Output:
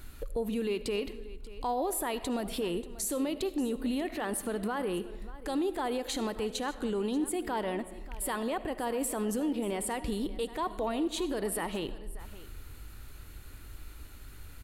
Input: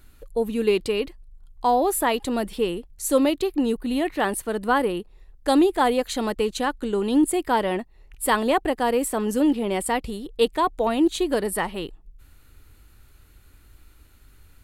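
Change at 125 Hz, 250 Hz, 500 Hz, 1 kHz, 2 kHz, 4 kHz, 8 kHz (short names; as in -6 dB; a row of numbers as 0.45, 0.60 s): -5.0, -9.5, -10.0, -12.0, -11.0, -8.5, -5.5 dB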